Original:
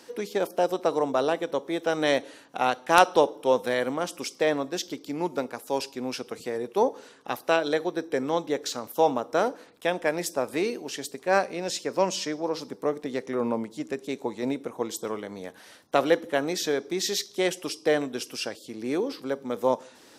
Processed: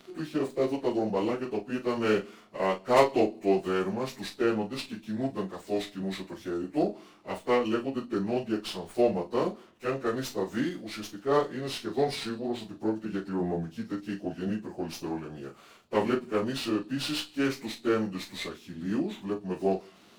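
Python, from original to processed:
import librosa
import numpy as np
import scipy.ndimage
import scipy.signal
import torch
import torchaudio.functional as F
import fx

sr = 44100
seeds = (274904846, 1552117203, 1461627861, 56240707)

y = fx.pitch_bins(x, sr, semitones=-5.0)
y = fx.doubler(y, sr, ms=37.0, db=-9.0)
y = fx.running_max(y, sr, window=3)
y = y * 10.0 ** (-1.5 / 20.0)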